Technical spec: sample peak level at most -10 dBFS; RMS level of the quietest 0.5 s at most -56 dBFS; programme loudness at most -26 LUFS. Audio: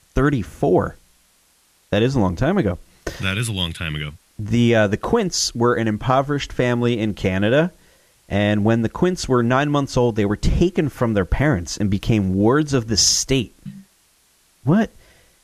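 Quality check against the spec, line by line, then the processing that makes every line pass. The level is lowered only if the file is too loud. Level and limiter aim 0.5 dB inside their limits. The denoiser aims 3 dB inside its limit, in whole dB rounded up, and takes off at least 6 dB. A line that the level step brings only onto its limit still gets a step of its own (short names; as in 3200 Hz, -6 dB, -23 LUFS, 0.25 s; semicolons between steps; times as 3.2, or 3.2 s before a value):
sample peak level -5.0 dBFS: fail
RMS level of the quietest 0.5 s -59 dBFS: OK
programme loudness -19.5 LUFS: fail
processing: gain -7 dB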